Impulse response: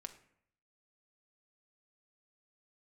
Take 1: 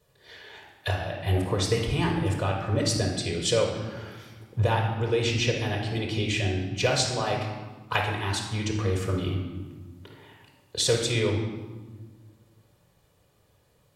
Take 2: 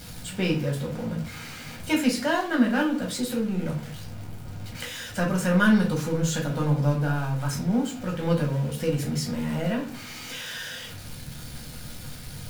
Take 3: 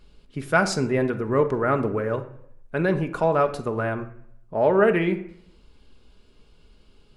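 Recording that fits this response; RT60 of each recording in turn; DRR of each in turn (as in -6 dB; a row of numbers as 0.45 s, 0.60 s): 3; 1.4 s, 0.40 s, 0.65 s; -0.5 dB, -1.5 dB, 6.5 dB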